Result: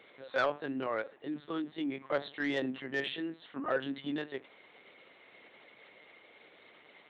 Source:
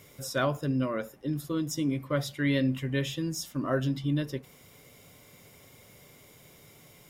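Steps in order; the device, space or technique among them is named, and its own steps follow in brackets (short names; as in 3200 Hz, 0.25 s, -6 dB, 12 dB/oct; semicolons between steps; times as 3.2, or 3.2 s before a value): talking toy (LPC vocoder at 8 kHz pitch kept; HPF 380 Hz 12 dB/oct; bell 1800 Hz +5.5 dB 0.6 oct; soft clip -19.5 dBFS, distortion -18 dB); 2.16–3.01 bell 2200 Hz -5.5 dB 0.7 oct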